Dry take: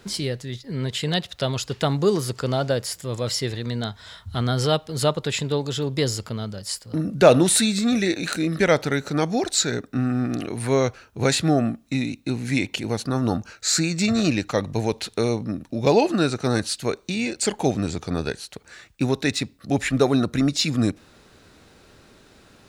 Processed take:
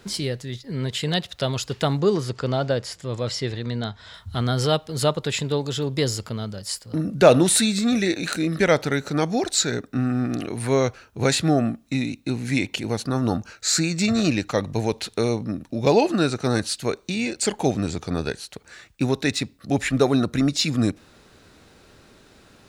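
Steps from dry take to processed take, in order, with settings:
0:02.00–0:04.14: high-frequency loss of the air 68 metres

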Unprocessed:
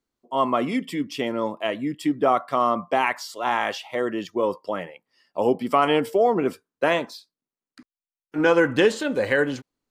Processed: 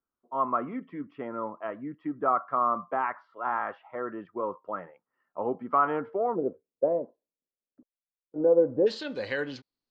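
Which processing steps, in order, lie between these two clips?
transistor ladder low-pass 1,500 Hz, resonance 60%, from 0:06.35 620 Hz, from 0:08.86 5,100 Hz

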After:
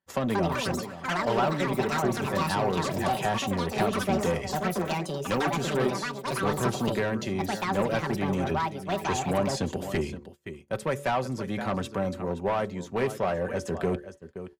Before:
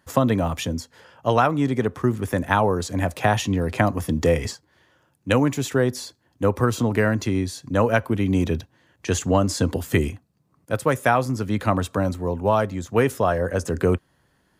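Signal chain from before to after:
on a send: single-tap delay 521 ms −14.5 dB
on the sum: soft clipping −14 dBFS, distortion −14 dB
parametric band 1,300 Hz −5 dB 1.1 octaves
hum removal 71.26 Hz, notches 8
noise gate −40 dBFS, range −19 dB
low-shelf EQ 490 Hz −6.5 dB
asymmetric clip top −23 dBFS
low-pass filter 2,900 Hz 6 dB per octave
delay with pitch and tempo change per echo 239 ms, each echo +7 semitones, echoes 2
comb filter 5.2 ms, depth 42%

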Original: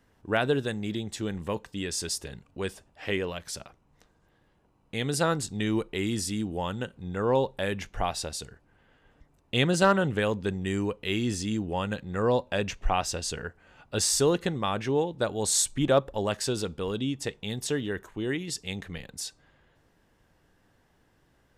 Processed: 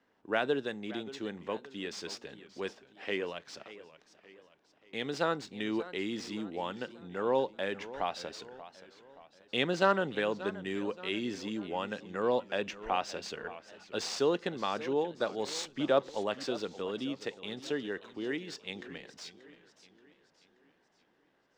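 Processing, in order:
running median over 5 samples
three-way crossover with the lows and the highs turned down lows −22 dB, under 200 Hz, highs −21 dB, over 7,200 Hz
feedback echo with a swinging delay time 580 ms, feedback 46%, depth 149 cents, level −16 dB
level −4 dB

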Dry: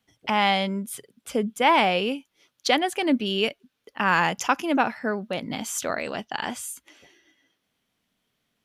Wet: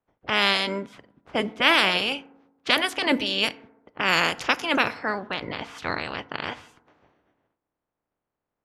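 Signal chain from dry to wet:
ceiling on every frequency bin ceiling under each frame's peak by 22 dB
feedback delay network reverb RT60 1 s, low-frequency decay 1.1×, high-frequency decay 0.4×, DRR 15.5 dB
low-pass that shuts in the quiet parts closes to 950 Hz, open at −18 dBFS

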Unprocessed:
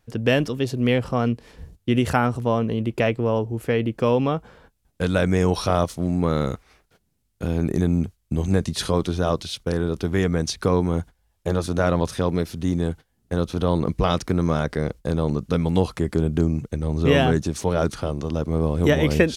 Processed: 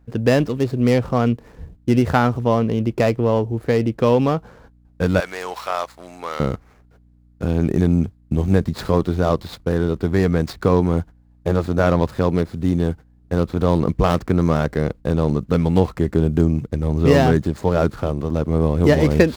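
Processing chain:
running median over 15 samples
0:05.20–0:06.40: high-pass filter 930 Hz 12 dB per octave
mains hum 60 Hz, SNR 34 dB
level +4 dB

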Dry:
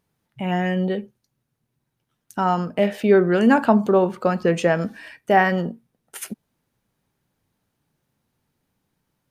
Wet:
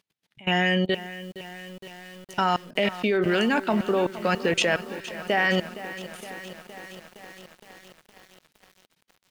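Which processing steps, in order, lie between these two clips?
meter weighting curve D
output level in coarse steps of 24 dB
feedback echo at a low word length 465 ms, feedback 80%, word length 7 bits, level −14.5 dB
level +2 dB

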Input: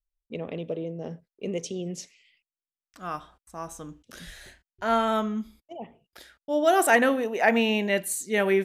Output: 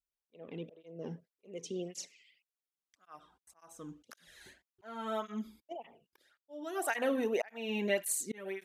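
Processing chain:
downward compressor 5 to 1, threshold −24 dBFS, peak gain reduction 9.5 dB
volume swells 544 ms
through-zero flanger with one copy inverted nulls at 1.8 Hz, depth 1.8 ms

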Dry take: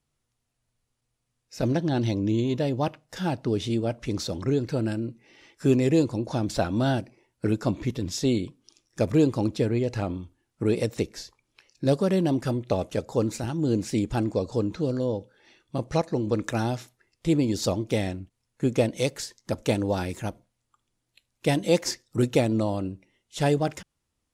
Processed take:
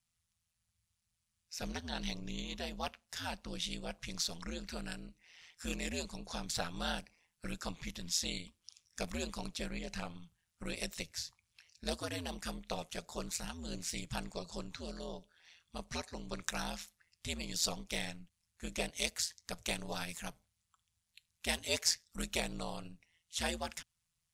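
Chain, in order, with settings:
guitar amp tone stack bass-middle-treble 10-0-10
ring modulation 84 Hz
level +3 dB

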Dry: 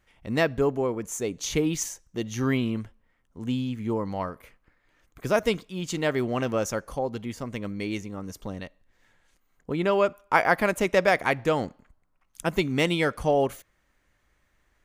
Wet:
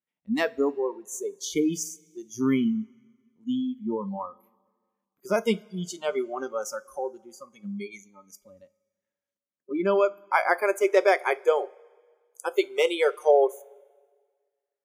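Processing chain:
high-pass filter sweep 200 Hz → 430 Hz, 0:09.48–0:11.65
noise reduction from a noise print of the clip's start 27 dB
coupled-rooms reverb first 0.23 s, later 1.7 s, from −20 dB, DRR 14 dB
level −2 dB

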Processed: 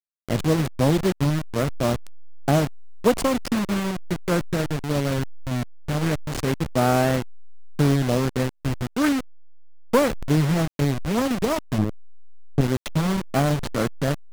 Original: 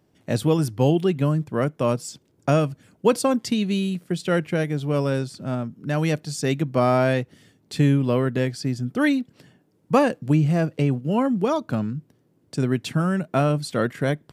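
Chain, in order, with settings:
hold until the input has moved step −21 dBFS
0:11.78–0:12.61: tilt shelving filter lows +7 dB
highs frequency-modulated by the lows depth 0.72 ms

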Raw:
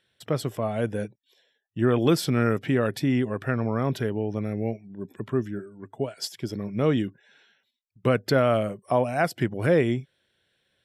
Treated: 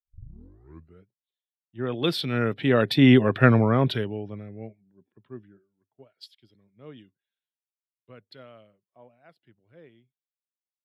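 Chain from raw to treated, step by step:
turntable start at the beginning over 1.15 s
source passing by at 0:03.34, 7 m/s, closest 3.1 metres
high shelf with overshoot 5,000 Hz −9.5 dB, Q 3
multiband upward and downward expander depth 100%
level +2 dB

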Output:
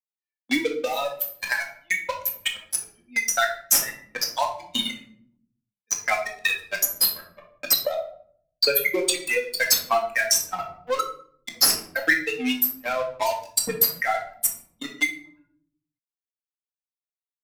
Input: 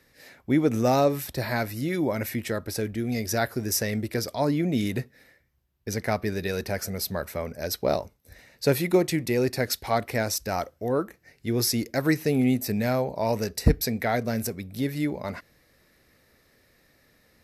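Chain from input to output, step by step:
spectral dynamics exaggerated over time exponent 3
noise gate with hold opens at −50 dBFS
high-pass filter 850 Hz 12 dB per octave
high-shelf EQ 7,600 Hz +10 dB
notch filter 1,500 Hz, Q 25
leveller curve on the samples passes 3
0:00.77–0:03.37: downward compressor 6 to 1, threshold −32 dBFS, peak gain reduction 13 dB
transient designer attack +6 dB, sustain −9 dB
rectangular room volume 490 cubic metres, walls furnished, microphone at 2.1 metres
multiband upward and downward compressor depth 70%

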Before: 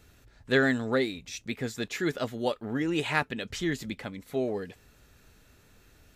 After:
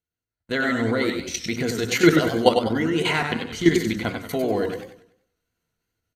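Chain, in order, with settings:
automatic gain control gain up to 15 dB
EQ curve with evenly spaced ripples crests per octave 1.9, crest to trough 9 dB
ambience of single reflections 11 ms −11.5 dB, 80 ms −15.5 dB
output level in coarse steps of 12 dB
noise gate −41 dBFS, range −32 dB
low-shelf EQ 61 Hz −6 dB
hum removal 60.1 Hz, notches 30
feedback echo with a swinging delay time 96 ms, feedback 38%, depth 139 cents, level −6 dB
level +1.5 dB

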